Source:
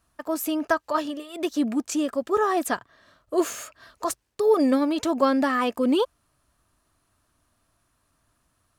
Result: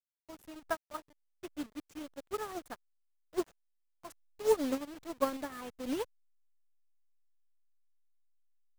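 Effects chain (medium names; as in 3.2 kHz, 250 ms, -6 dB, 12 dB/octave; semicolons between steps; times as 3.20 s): send-on-delta sampling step -23.5 dBFS; crossover distortion -47 dBFS; upward expansion 2.5:1, over -34 dBFS; trim -5.5 dB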